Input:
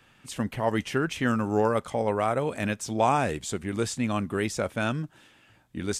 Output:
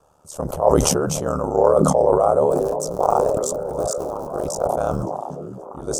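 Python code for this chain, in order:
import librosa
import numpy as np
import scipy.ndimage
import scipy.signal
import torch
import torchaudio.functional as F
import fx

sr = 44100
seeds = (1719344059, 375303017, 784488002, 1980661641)

y = fx.cycle_switch(x, sr, every=2, mode='muted', at=(2.51, 5.03))
y = fx.curve_eq(y, sr, hz=(120.0, 260.0, 540.0, 1300.0, 1900.0, 3800.0, 5900.0), db=(0, -8, 12, 1, -26, -13, 2))
y = y * np.sin(2.0 * np.pi * 37.0 * np.arange(len(y)) / sr)
y = fx.echo_stepped(y, sr, ms=525, hz=180.0, octaves=0.7, feedback_pct=70, wet_db=-4.5)
y = fx.sustainer(y, sr, db_per_s=24.0)
y = y * 10.0 ** (3.0 / 20.0)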